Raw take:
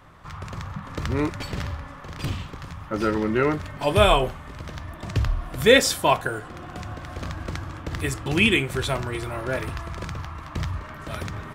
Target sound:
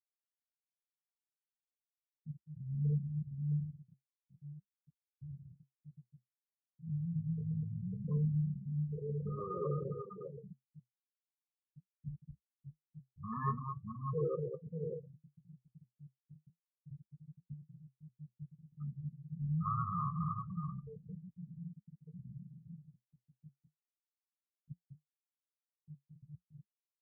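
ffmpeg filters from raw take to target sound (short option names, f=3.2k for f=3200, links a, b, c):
-filter_complex "[0:a]anlmdn=2.51,aecho=1:1:62|92|182|255|302|686:0.112|0.596|0.106|0.501|0.224|0.112,acrossover=split=640|1200[a][b][c];[a]asoftclip=type=tanh:threshold=-18.5dB[d];[d][b][c]amix=inputs=3:normalize=0,aexciter=amount=8.2:drive=6.3:freq=8.8k,asplit=3[e][f][g];[e]bandpass=f=300:t=q:w=8,volume=0dB[h];[f]bandpass=f=870:t=q:w=8,volume=-6dB[i];[g]bandpass=f=2.24k:t=q:w=8,volume=-9dB[j];[h][i][j]amix=inputs=3:normalize=0,asetrate=18846,aresample=44100,afftfilt=real='re*gte(hypot(re,im),0.0708)':imag='im*gte(hypot(re,im),0.0708)':win_size=1024:overlap=0.75,asetrate=50951,aresample=44100,atempo=0.865537,flanger=delay=7.2:depth=5:regen=-58:speed=0.41:shape=sinusoidal"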